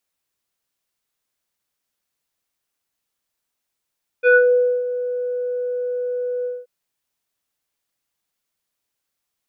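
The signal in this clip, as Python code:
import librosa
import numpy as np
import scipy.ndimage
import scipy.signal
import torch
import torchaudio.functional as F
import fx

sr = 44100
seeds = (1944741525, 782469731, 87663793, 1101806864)

y = fx.sub_voice(sr, note=71, wave='square', cutoff_hz=830.0, q=3.3, env_oct=1.5, env_s=0.29, attack_ms=42.0, decay_s=0.56, sustain_db=-13, release_s=0.21, note_s=2.22, slope=24)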